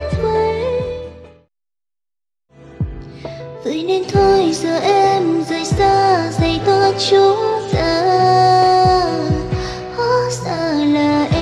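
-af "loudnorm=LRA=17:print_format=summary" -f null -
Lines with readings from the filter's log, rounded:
Input Integrated:    -15.1 LUFS
Input True Peak:      -2.7 dBTP
Input LRA:             9.0 LU
Input Threshold:     -25.7 LUFS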